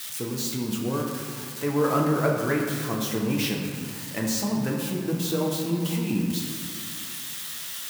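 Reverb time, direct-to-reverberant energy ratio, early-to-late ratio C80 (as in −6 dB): 2.1 s, −1.5 dB, 4.0 dB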